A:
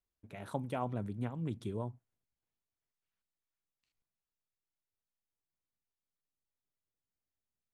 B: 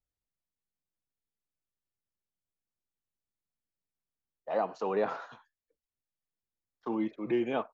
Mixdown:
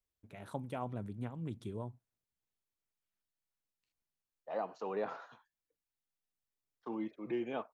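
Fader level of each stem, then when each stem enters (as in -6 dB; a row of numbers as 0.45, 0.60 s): -3.5, -7.5 dB; 0.00, 0.00 s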